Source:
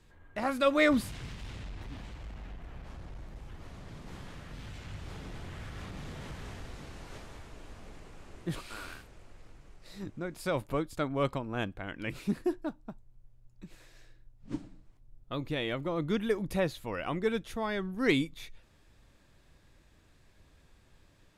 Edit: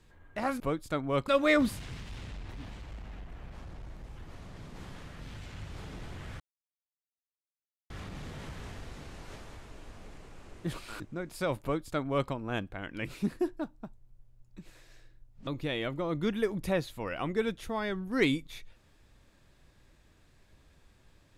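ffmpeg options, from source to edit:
ffmpeg -i in.wav -filter_complex "[0:a]asplit=6[link_01][link_02][link_03][link_04][link_05][link_06];[link_01]atrim=end=0.602[link_07];[link_02]atrim=start=10.668:end=11.352[link_08];[link_03]atrim=start=0.598:end=5.72,asetpts=PTS-STARTPTS,afade=type=out:start_time=5.118:duration=0.004:curve=hsin,apad=pad_dur=1.5[link_09];[link_04]atrim=start=5.72:end=8.822,asetpts=PTS-STARTPTS,afade=type=in:duration=0.004:curve=hsin[link_10];[link_05]atrim=start=10.048:end=14.522[link_11];[link_06]atrim=start=15.338[link_12];[link_07][link_08]acrossfade=duration=0.004:curve1=hsin:curve2=hsin[link_13];[link_09][link_10]concat=n=2:v=0:a=1[link_14];[link_13][link_14]acrossfade=duration=0.004:curve1=hsin:curve2=hsin[link_15];[link_15][link_11]acrossfade=duration=0.004:curve1=hsin:curve2=hsin[link_16];[link_16][link_12]acrossfade=duration=0.004:curve1=hsin:curve2=hsin" out.wav

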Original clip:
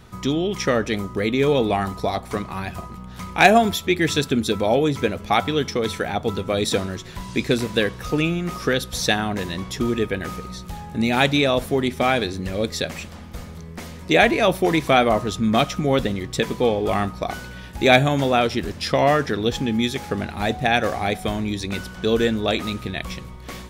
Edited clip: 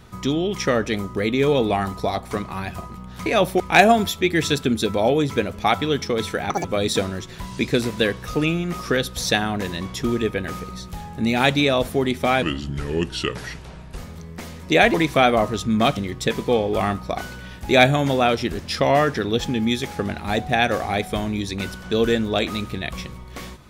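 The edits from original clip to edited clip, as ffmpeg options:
ffmpeg -i in.wav -filter_complex "[0:a]asplit=9[link_01][link_02][link_03][link_04][link_05][link_06][link_07][link_08][link_09];[link_01]atrim=end=3.262[link_10];[link_02]atrim=start=14.328:end=14.672[link_11];[link_03]atrim=start=3.258:end=6.164[link_12];[link_04]atrim=start=6.16:end=6.41,asetpts=PTS-STARTPTS,asetrate=76293,aresample=44100[link_13];[link_05]atrim=start=6.406:end=12.194[link_14];[link_06]atrim=start=12.19:end=13.37,asetpts=PTS-STARTPTS,asetrate=33516,aresample=44100,atrim=end_sample=68471,asetpts=PTS-STARTPTS[link_15];[link_07]atrim=start=13.366:end=14.332[link_16];[link_08]atrim=start=14.668:end=15.702[link_17];[link_09]atrim=start=16.088[link_18];[link_10][link_11]acrossfade=duration=0.004:curve1=hsin:curve2=hsin[link_19];[link_19][link_12]acrossfade=duration=0.004:curve1=hsin:curve2=hsin[link_20];[link_20][link_13]acrossfade=duration=0.004:curve1=hsin:curve2=hsin[link_21];[link_21][link_14]acrossfade=duration=0.004:curve1=hsin:curve2=hsin[link_22];[link_22][link_15]acrossfade=duration=0.004:curve1=hsin:curve2=hsin[link_23];[link_23][link_16]acrossfade=duration=0.004:curve1=hsin:curve2=hsin[link_24];[link_24][link_17]acrossfade=duration=0.004:curve1=hsin:curve2=hsin[link_25];[link_25][link_18]acrossfade=duration=0.004:curve1=hsin:curve2=hsin" out.wav

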